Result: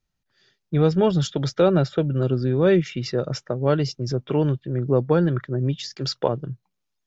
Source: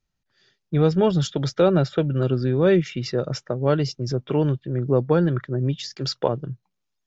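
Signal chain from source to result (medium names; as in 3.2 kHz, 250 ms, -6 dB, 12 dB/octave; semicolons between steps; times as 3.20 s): 1.85–2.51 s: dynamic bell 2.2 kHz, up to -4 dB, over -42 dBFS, Q 0.71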